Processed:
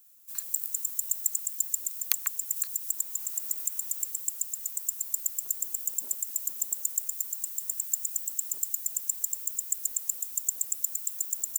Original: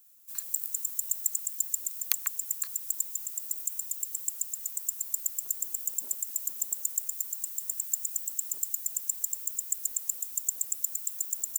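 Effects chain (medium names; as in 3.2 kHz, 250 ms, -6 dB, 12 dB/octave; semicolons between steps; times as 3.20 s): 2.56–4.11 s: three bands compressed up and down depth 70%; trim +1 dB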